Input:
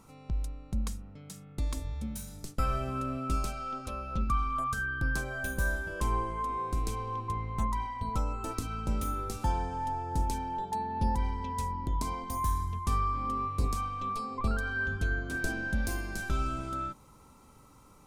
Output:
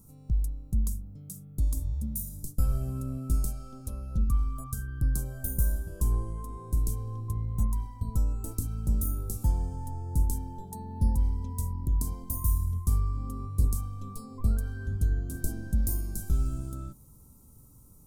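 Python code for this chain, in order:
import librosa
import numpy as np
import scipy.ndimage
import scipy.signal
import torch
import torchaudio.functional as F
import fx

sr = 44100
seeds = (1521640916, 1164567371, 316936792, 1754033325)

y = fx.curve_eq(x, sr, hz=(120.0, 2300.0, 13000.0), db=(0, -27, 7))
y = F.gain(torch.from_numpy(y), 5.5).numpy()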